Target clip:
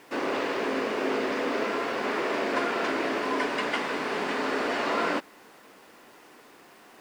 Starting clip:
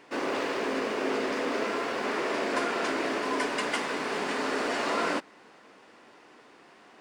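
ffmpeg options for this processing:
-filter_complex "[0:a]acrossover=split=4600[s0][s1];[s1]acompressor=threshold=0.00251:ratio=4:attack=1:release=60[s2];[s0][s2]amix=inputs=2:normalize=0,acrusher=bits=9:mix=0:aa=0.000001,volume=1.19"

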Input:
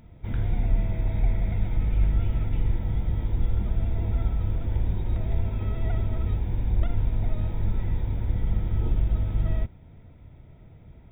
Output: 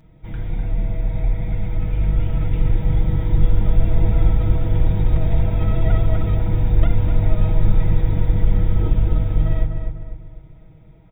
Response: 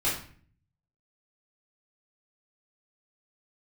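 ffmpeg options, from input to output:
-filter_complex "[0:a]dynaudnorm=f=380:g=13:m=3.16,aecho=1:1:6.3:0.65,asplit=2[s0][s1];[s1]adelay=250,lowpass=f=2300:p=1,volume=0.531,asplit=2[s2][s3];[s3]adelay=250,lowpass=f=2300:p=1,volume=0.44,asplit=2[s4][s5];[s5]adelay=250,lowpass=f=2300:p=1,volume=0.44,asplit=2[s6][s7];[s7]adelay=250,lowpass=f=2300:p=1,volume=0.44,asplit=2[s8][s9];[s9]adelay=250,lowpass=f=2300:p=1,volume=0.44[s10];[s0][s2][s4][s6][s8][s10]amix=inputs=6:normalize=0,volume=0.891"

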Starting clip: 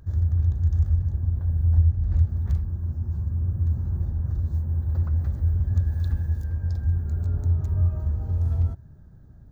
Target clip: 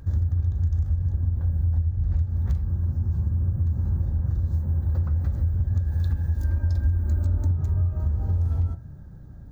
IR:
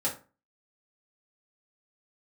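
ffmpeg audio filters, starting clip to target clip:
-filter_complex "[0:a]asplit=2[s0][s1];[1:a]atrim=start_sample=2205[s2];[s1][s2]afir=irnorm=-1:irlink=0,volume=0.2[s3];[s0][s3]amix=inputs=2:normalize=0,acompressor=threshold=0.0631:ratio=6,asettb=1/sr,asplit=3[s4][s5][s6];[s4]atrim=end=6.384[s7];[s5]atrim=start=6.38:end=7.51,asetpts=PTS-STARTPTS,afade=t=in:d=0.004:c=qsin,afade=t=out:st=1.126:d=0.004:c=qsin,aecho=1:1:3.3:0.71,atrim=end_sample=49833[s8];[s6]atrim=start=7.506[s9];[s7][s8]acrossfade=d=0.004:c1=hsin:c2=qsin[s10];[s10][s9]acrossfade=d=0.004:c1=qsin:c2=hsin,volume=1.58"

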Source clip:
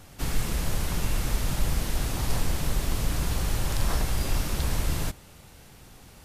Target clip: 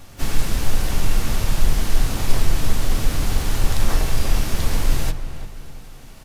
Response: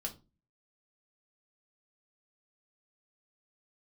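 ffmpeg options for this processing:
-filter_complex "[0:a]asplit=3[s0][s1][s2];[s1]asetrate=22050,aresample=44100,atempo=2,volume=0.708[s3];[s2]asetrate=88200,aresample=44100,atempo=0.5,volume=0.178[s4];[s0][s3][s4]amix=inputs=3:normalize=0,asplit=2[s5][s6];[s6]adelay=342,lowpass=f=2300:p=1,volume=0.282,asplit=2[s7][s8];[s8]adelay=342,lowpass=f=2300:p=1,volume=0.42,asplit=2[s9][s10];[s10]adelay=342,lowpass=f=2300:p=1,volume=0.42,asplit=2[s11][s12];[s12]adelay=342,lowpass=f=2300:p=1,volume=0.42[s13];[s5][s7][s9][s11][s13]amix=inputs=5:normalize=0,asplit=2[s14][s15];[1:a]atrim=start_sample=2205[s16];[s15][s16]afir=irnorm=-1:irlink=0,volume=0.562[s17];[s14][s17]amix=inputs=2:normalize=0"

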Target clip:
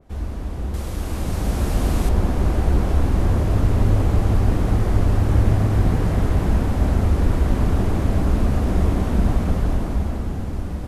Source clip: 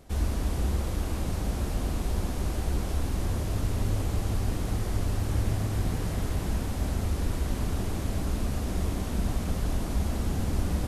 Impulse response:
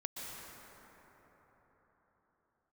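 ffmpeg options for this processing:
-af "asetnsamples=n=441:p=0,asendcmd='0.74 highshelf g 3;2.09 highshelf g -7.5',highshelf=f=3200:g=-11,dynaudnorm=f=250:g=11:m=3.55,adynamicequalizer=threshold=0.00562:dfrequency=2500:dqfactor=0.7:tfrequency=2500:tqfactor=0.7:attack=5:release=100:ratio=0.375:range=2.5:mode=cutabove:tftype=highshelf"

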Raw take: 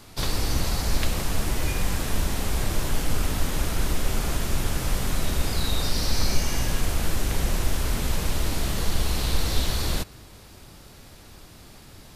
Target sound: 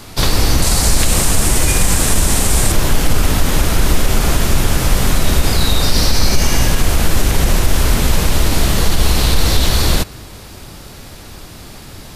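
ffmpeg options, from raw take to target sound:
-filter_complex "[0:a]asettb=1/sr,asplit=3[s0][s1][s2];[s0]atrim=end=0.624[s3];[s1]atrim=start=0.62:end=2.72,asetpts=PTS-STARTPTS,afade=t=in:d=0.004:c=qsin,afade=t=out:st=2.096:d=0.004:c=qsin,equalizer=f=8500:t=o:w=0.87:g=10.5[s4];[s2]atrim=start=2.716[s5];[s3][s4]acrossfade=d=0.004:c1=hsin:c2=qsin[s6];[s6][s5]acrossfade=d=0.004:c1=qsin:c2=hsin,alimiter=level_in=4.73:limit=0.891:release=50:level=0:latency=1,volume=0.891"

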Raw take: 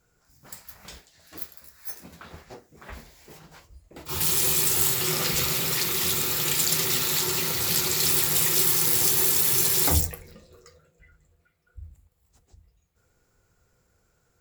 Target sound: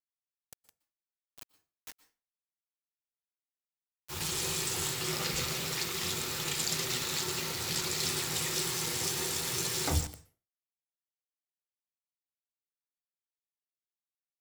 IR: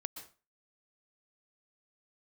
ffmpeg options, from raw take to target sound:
-filter_complex "[0:a]aeval=exprs='val(0)*gte(abs(val(0)),0.0422)':c=same,acrossover=split=8600[s0][s1];[s1]acompressor=threshold=0.0158:ratio=4:attack=1:release=60[s2];[s0][s2]amix=inputs=2:normalize=0,asplit=2[s3][s4];[1:a]atrim=start_sample=2205[s5];[s4][s5]afir=irnorm=-1:irlink=0,volume=0.562[s6];[s3][s6]amix=inputs=2:normalize=0,volume=0.376"

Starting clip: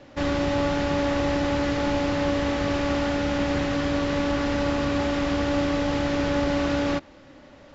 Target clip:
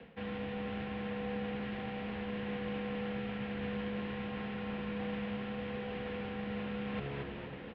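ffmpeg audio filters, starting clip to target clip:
-filter_complex "[0:a]lowshelf=f=200:g=5.5,asplit=2[s0][s1];[s1]asplit=4[s2][s3][s4][s5];[s2]adelay=238,afreqshift=-70,volume=0.188[s6];[s3]adelay=476,afreqshift=-140,volume=0.0794[s7];[s4]adelay=714,afreqshift=-210,volume=0.0331[s8];[s5]adelay=952,afreqshift=-280,volume=0.014[s9];[s6][s7][s8][s9]amix=inputs=4:normalize=0[s10];[s0][s10]amix=inputs=2:normalize=0,crystalizer=i=3.5:c=0,equalizer=f=1300:w=3.7:g=-5,areverse,acompressor=threshold=0.02:ratio=20,areverse,asplit=2[s11][s12];[s12]adelay=326.5,volume=0.316,highshelf=f=4000:g=-7.35[s13];[s11][s13]amix=inputs=2:normalize=0,highpass=f=160:t=q:w=0.5412,highpass=f=160:t=q:w=1.307,lowpass=f=3100:t=q:w=0.5176,lowpass=f=3100:t=q:w=0.7071,lowpass=f=3100:t=q:w=1.932,afreqshift=-79"

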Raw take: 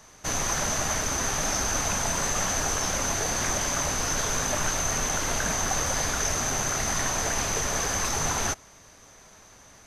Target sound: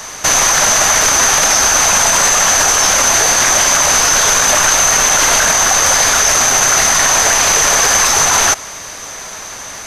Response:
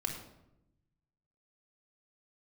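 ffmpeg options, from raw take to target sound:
-filter_complex "[0:a]lowshelf=f=420:g=-11.5,acrossover=split=440[s0][s1];[s0]acompressor=threshold=0.00398:ratio=1.5[s2];[s2][s1]amix=inputs=2:normalize=0,alimiter=level_in=20:limit=0.891:release=50:level=0:latency=1,volume=0.891"

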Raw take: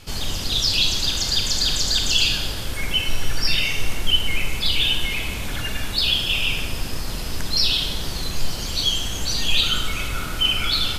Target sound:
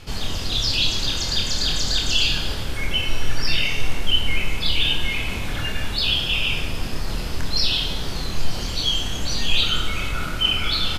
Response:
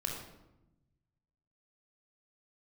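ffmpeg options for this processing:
-filter_complex "[0:a]highshelf=f=5900:g=-9.5,areverse,acompressor=mode=upward:threshold=0.0794:ratio=2.5,areverse,asplit=2[s0][s1];[s1]adelay=26,volume=0.531[s2];[s0][s2]amix=inputs=2:normalize=0"

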